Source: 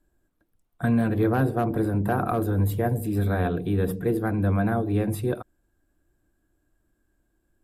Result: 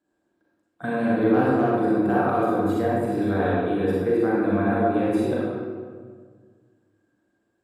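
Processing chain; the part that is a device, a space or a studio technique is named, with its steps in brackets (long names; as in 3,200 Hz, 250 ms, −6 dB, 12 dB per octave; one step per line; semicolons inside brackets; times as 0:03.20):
supermarket ceiling speaker (band-pass filter 210–6,200 Hz; convolution reverb RT60 1.7 s, pre-delay 34 ms, DRR −6.5 dB)
level −3 dB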